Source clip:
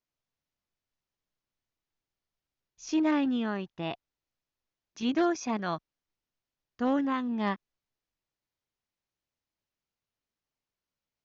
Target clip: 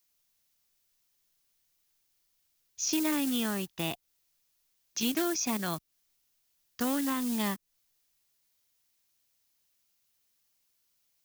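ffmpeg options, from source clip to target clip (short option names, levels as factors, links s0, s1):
-filter_complex "[0:a]acrossover=split=390|940[s0][s1][s2];[s0]acompressor=threshold=0.0224:ratio=4[s3];[s1]acompressor=threshold=0.00562:ratio=4[s4];[s2]acompressor=threshold=0.00501:ratio=4[s5];[s3][s4][s5]amix=inputs=3:normalize=0,acrusher=bits=6:mode=log:mix=0:aa=0.000001,crystalizer=i=6:c=0,volume=1.26"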